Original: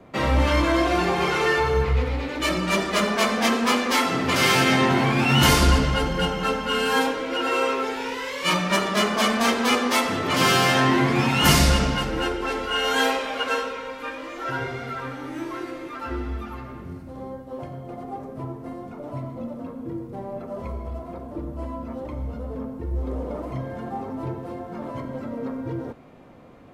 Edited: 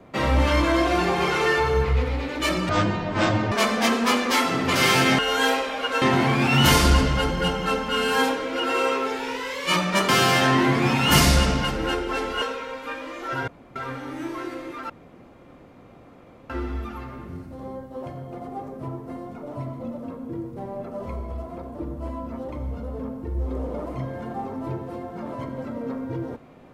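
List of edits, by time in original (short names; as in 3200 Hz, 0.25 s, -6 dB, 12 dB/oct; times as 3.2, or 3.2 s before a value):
2.69–3.12 speed 52%
8.86–10.42 cut
12.75–13.58 move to 4.79
14.64–14.92 room tone
16.06 insert room tone 1.60 s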